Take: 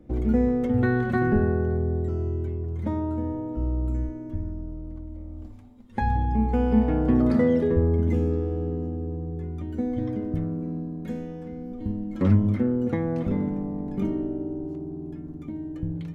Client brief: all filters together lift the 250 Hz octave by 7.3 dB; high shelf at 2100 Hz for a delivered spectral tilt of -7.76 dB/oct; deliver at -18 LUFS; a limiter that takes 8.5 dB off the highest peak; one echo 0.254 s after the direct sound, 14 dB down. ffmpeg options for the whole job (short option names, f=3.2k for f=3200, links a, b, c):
-af "equalizer=f=250:t=o:g=8.5,highshelf=f=2.1k:g=-7,alimiter=limit=-11dB:level=0:latency=1,aecho=1:1:254:0.2,volume=4dB"